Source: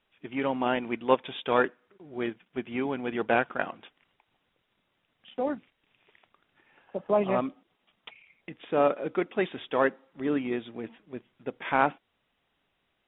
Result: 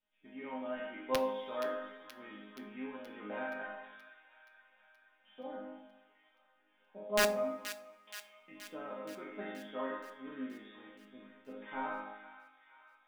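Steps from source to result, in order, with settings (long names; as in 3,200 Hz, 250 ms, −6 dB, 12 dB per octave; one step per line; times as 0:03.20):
peak hold with a decay on every bin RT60 0.93 s
dynamic equaliser 2,700 Hz, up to −6 dB, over −48 dBFS, Q 2.4
resonators tuned to a chord G#3 major, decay 0.7 s
wrap-around overflow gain 26.5 dB
delay with a high-pass on its return 475 ms, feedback 62%, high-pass 1,600 Hz, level −10.5 dB
coupled-rooms reverb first 0.32 s, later 2.3 s, from −27 dB, DRR 10 dB
level +6 dB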